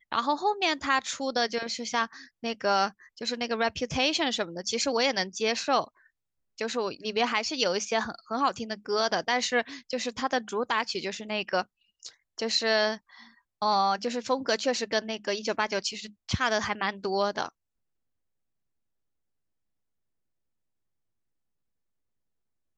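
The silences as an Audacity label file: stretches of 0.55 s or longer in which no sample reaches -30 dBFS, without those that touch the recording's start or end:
5.840000	6.610000	silence
12.950000	13.620000	silence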